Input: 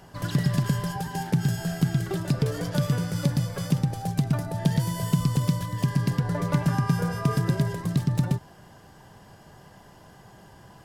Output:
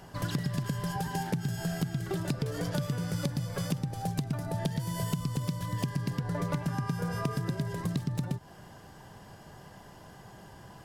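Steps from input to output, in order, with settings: compression, threshold -28 dBFS, peak gain reduction 11.5 dB

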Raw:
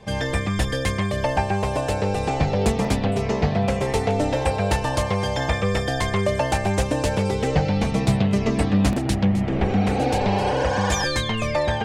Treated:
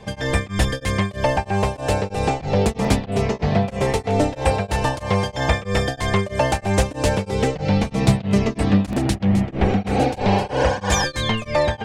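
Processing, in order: tremolo of two beating tones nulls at 3.1 Hz; trim +4.5 dB

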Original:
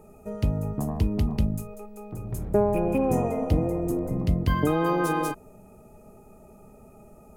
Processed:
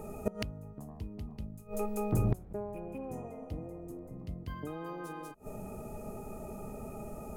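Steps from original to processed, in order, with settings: inverted gate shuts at -24 dBFS, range -25 dB; de-hum 182.6 Hz, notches 8; trim +7.5 dB

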